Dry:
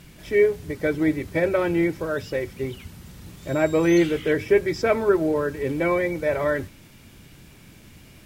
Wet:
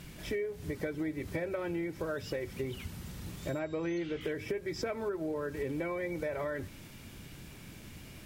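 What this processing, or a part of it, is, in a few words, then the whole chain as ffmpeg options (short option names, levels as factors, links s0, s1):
serial compression, peaks first: -filter_complex "[0:a]asettb=1/sr,asplit=3[s0][s1][s2];[s0]atrim=end=3.594[s3];[s1]atrim=start=3.59:end=4.21,asetpts=PTS-STARTPTS,afade=t=in:d=0.004:c=qsin,afade=t=out:st=0.616:d=0.004:c=qsin,lowpass=f=6000:w=0.5412,lowpass=f=6000:w=1.3066[s4];[s2]atrim=start=4.206[s5];[s3][s4]acrossfade=d=0.004:c1=hsin:c2=qsin[s6];[s6][s5]acrossfade=d=0.004:c1=qsin:c2=hsin,acompressor=threshold=0.0447:ratio=6,acompressor=threshold=0.02:ratio=2,volume=0.891"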